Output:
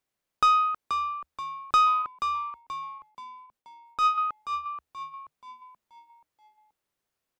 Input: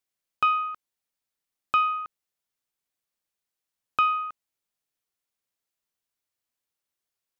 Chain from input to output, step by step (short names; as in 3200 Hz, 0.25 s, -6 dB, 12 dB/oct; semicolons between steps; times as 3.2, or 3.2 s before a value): high shelf 2300 Hz -9.5 dB; soft clip -23.5 dBFS, distortion -13 dB; 2.02–4.18 tremolo triangle 6 Hz, depth 75%; frequency-shifting echo 0.48 s, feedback 43%, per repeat -79 Hz, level -8 dB; gain +8 dB